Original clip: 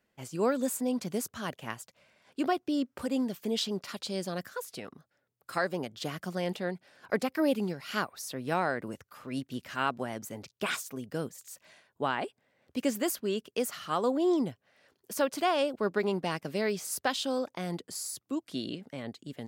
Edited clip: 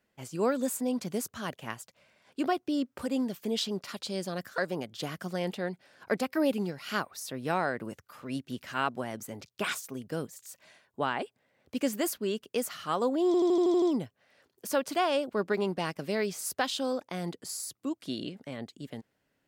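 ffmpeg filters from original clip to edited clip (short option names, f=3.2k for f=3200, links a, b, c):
-filter_complex "[0:a]asplit=9[a][b][c][d][e][f][g][h][i];[a]atrim=end=4.582[j];[b]atrim=start=5.598:end=14.362[k];[c]atrim=start=14.278:end=14.362[l];[d]atrim=start=14.278:end=14.362[m];[e]atrim=start=14.278:end=14.362[n];[f]atrim=start=14.278:end=14.362[o];[g]atrim=start=14.278:end=14.362[p];[h]atrim=start=14.278:end=14.362[q];[i]atrim=start=14.278[r];[j][k]acrossfade=d=0.004:c1=hsin:c2=hsin[s];[s][l]acrossfade=d=0.004:c1=hsin:c2=hsin[t];[t][m]acrossfade=d=0.004:c1=hsin:c2=hsin[u];[u][n]acrossfade=d=0.004:c1=hsin:c2=hsin[v];[v][o]acrossfade=d=0.004:c1=hsin:c2=hsin[w];[w][p]acrossfade=d=0.004:c1=hsin:c2=hsin[x];[x][q]acrossfade=d=0.004:c1=hsin:c2=hsin[y];[y][r]acrossfade=d=0.004:c1=hsin:c2=hsin"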